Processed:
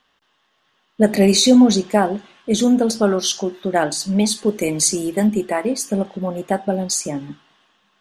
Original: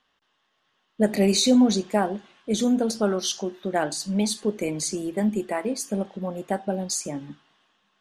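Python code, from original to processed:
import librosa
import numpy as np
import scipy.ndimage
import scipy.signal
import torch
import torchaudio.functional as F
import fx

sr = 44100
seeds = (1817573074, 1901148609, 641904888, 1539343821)

y = fx.high_shelf(x, sr, hz=fx.line((4.45, 6400.0), (5.26, 4400.0)), db=8.5, at=(4.45, 5.26), fade=0.02)
y = y * 10.0 ** (6.5 / 20.0)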